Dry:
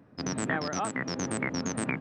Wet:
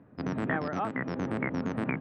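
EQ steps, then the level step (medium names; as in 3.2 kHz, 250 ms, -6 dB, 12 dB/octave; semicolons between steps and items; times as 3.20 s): distance through air 380 m; +1.5 dB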